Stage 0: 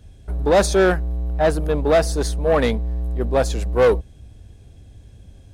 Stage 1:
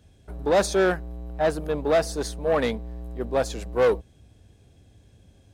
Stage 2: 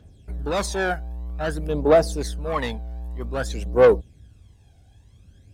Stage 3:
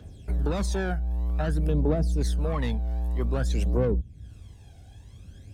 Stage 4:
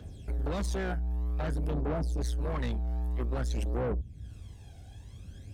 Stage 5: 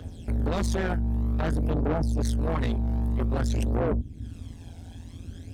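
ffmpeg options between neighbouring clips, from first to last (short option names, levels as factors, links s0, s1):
-af "highpass=f=140:p=1,equalizer=f=9900:t=o:w=0.29:g=-2.5,volume=0.596"
-af "aphaser=in_gain=1:out_gain=1:delay=1.4:decay=0.64:speed=0.52:type=triangular,volume=0.794"
-filter_complex "[0:a]acrossover=split=230[s0][s1];[s1]acompressor=threshold=0.0158:ratio=8[s2];[s0][s2]amix=inputs=2:normalize=0,volume=1.78"
-af "asoftclip=type=tanh:threshold=0.0422"
-af "tremolo=f=170:d=0.857,volume=2.82"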